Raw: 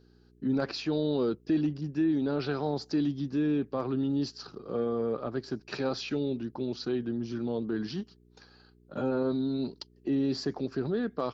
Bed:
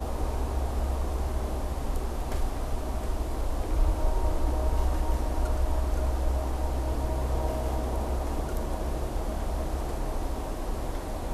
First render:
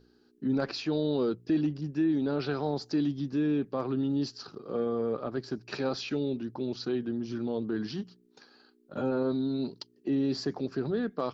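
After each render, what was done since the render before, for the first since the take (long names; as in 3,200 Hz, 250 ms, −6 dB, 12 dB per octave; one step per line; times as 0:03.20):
hum removal 60 Hz, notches 3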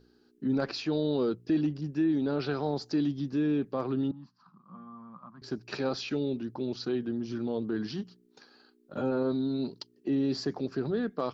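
0:04.11–0:05.42: pair of resonant band-passes 440 Hz, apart 2.5 octaves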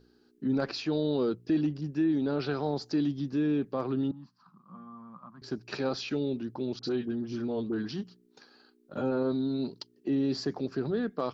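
0:06.79–0:07.89: all-pass dispersion highs, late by 41 ms, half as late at 890 Hz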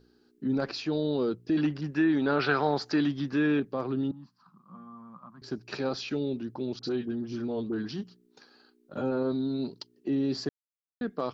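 0:01.57–0:03.60: parametric band 1,600 Hz +13.5 dB 2.3 octaves
0:10.49–0:11.01: silence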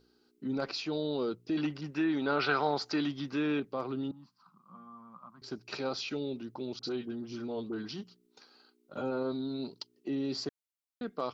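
low-shelf EQ 460 Hz −8 dB
notch filter 1,700 Hz, Q 6.8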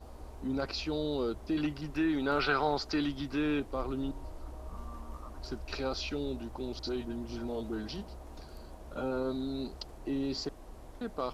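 mix in bed −17.5 dB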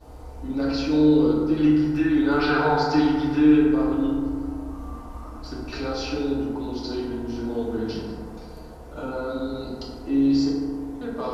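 feedback delay network reverb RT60 2 s, low-frequency decay 1.2×, high-frequency decay 0.35×, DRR −6 dB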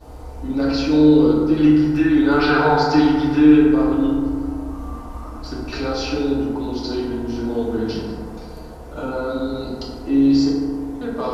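level +5 dB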